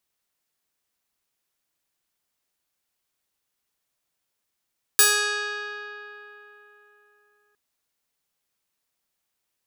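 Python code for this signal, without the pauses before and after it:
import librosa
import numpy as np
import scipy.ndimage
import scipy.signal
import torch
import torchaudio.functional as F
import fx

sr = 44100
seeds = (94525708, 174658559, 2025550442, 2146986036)

y = fx.pluck(sr, length_s=2.56, note=68, decay_s=3.66, pick=0.4, brightness='bright')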